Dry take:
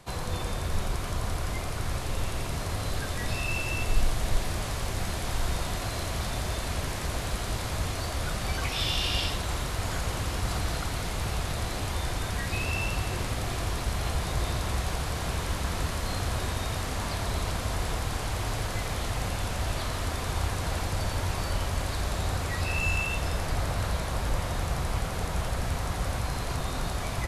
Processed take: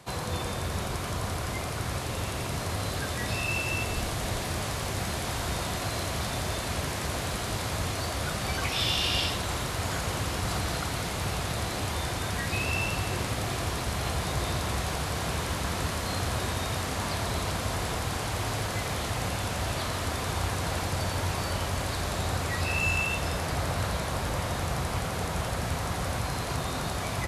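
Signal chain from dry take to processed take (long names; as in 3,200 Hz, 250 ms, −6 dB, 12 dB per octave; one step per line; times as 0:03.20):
high-pass filter 81 Hz 12 dB per octave
level +2 dB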